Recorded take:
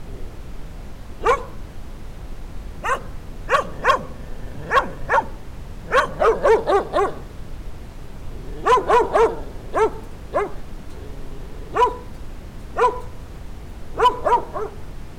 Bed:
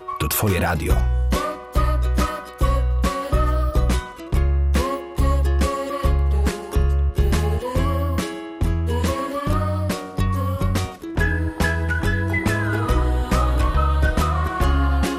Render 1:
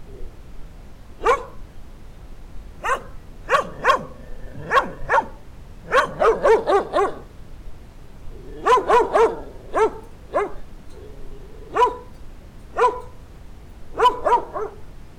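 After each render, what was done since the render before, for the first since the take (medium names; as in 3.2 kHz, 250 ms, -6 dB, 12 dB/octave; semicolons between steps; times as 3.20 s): noise print and reduce 6 dB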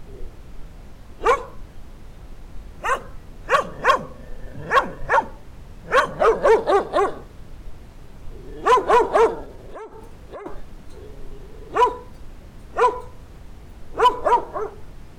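9.45–10.46 s: compression 12:1, threshold -32 dBFS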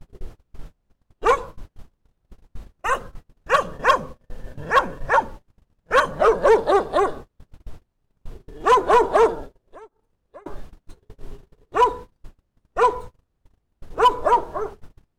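gate -33 dBFS, range -32 dB; peaking EQ 2.2 kHz -2.5 dB 0.37 oct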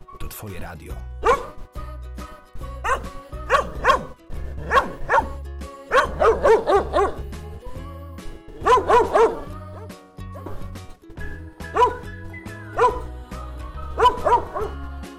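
add bed -15 dB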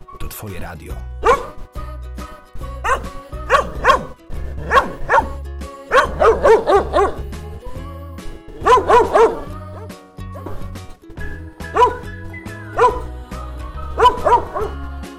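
trim +4.5 dB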